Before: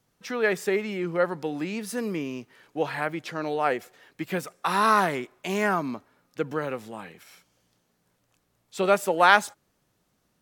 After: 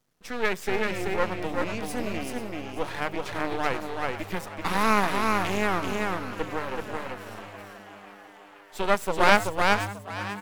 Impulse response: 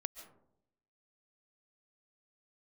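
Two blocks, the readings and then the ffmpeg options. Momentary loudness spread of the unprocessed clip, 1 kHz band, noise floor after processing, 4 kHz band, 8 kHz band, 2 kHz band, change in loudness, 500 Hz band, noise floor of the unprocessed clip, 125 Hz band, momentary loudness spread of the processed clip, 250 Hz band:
19 LU, -1.0 dB, -50 dBFS, +2.0 dB, +0.5 dB, 0.0 dB, -1.5 dB, -1.5 dB, -72 dBFS, +1.5 dB, 17 LU, 0.0 dB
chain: -filter_complex "[0:a]asplit=2[a][b];[b]aecho=0:1:381:0.708[c];[a][c]amix=inputs=2:normalize=0,aeval=exprs='max(val(0),0)':c=same,bandreject=f=50:t=h:w=6,bandreject=f=100:t=h:w=6,bandreject=f=150:t=h:w=6,asplit=2[d][e];[e]asplit=8[f][g][h][i][j][k][l][m];[f]adelay=489,afreqshift=100,volume=-13.5dB[n];[g]adelay=978,afreqshift=200,volume=-17.2dB[o];[h]adelay=1467,afreqshift=300,volume=-21dB[p];[i]adelay=1956,afreqshift=400,volume=-24.7dB[q];[j]adelay=2445,afreqshift=500,volume=-28.5dB[r];[k]adelay=2934,afreqshift=600,volume=-32.2dB[s];[l]adelay=3423,afreqshift=700,volume=-36dB[t];[m]adelay=3912,afreqshift=800,volume=-39.7dB[u];[n][o][p][q][r][s][t][u]amix=inputs=8:normalize=0[v];[d][v]amix=inputs=2:normalize=0,volume=1dB"

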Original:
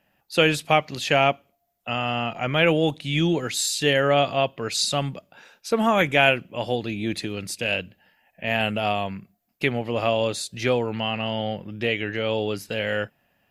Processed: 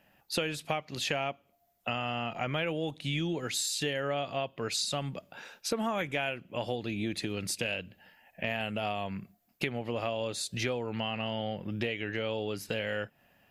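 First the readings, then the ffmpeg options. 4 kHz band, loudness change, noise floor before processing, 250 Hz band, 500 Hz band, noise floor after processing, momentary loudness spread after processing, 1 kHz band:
-8.5 dB, -10.0 dB, -70 dBFS, -9.0 dB, -11.0 dB, -70 dBFS, 6 LU, -11.0 dB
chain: -af "acompressor=threshold=-32dB:ratio=6,volume=2dB"

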